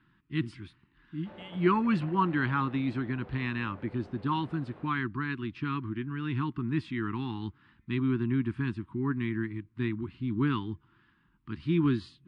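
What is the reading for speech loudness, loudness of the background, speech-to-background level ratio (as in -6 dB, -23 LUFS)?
-31.5 LUFS, -50.5 LUFS, 19.0 dB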